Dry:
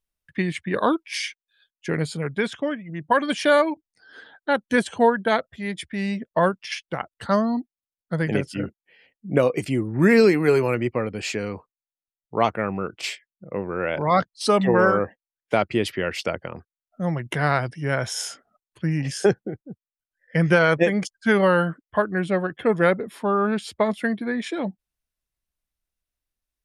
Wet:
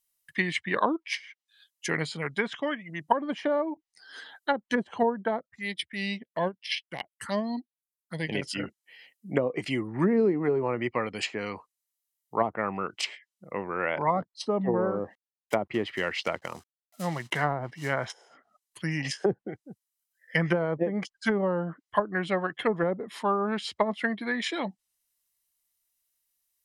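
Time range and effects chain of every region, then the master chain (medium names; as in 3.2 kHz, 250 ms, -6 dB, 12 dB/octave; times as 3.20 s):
5.39–8.42 s: transient shaper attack -4 dB, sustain -10 dB + touch-sensitive phaser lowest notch 400 Hz, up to 1.3 kHz, full sweep at -28.5 dBFS
14.95–18.10 s: low-pass 2.1 kHz 6 dB/octave + companded quantiser 6-bit
whole clip: RIAA curve recording; low-pass that closes with the level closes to 500 Hz, closed at -17.5 dBFS; comb 1 ms, depth 30%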